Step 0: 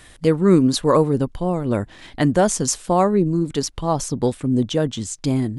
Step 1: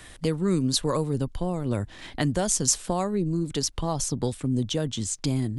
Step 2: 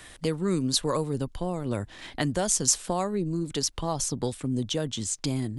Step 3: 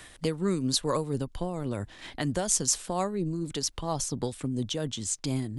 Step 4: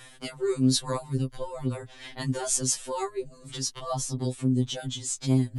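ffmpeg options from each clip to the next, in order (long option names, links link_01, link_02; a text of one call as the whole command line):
ffmpeg -i in.wav -filter_complex "[0:a]acrossover=split=120|3000[link_01][link_02][link_03];[link_02]acompressor=threshold=-29dB:ratio=2.5[link_04];[link_01][link_04][link_03]amix=inputs=3:normalize=0" out.wav
ffmpeg -i in.wav -af "lowshelf=frequency=250:gain=-5" out.wav
ffmpeg -i in.wav -af "tremolo=f=4.3:d=0.38" out.wav
ffmpeg -i in.wav -af "afftfilt=real='re*2.45*eq(mod(b,6),0)':imag='im*2.45*eq(mod(b,6),0)':win_size=2048:overlap=0.75,volume=2.5dB" out.wav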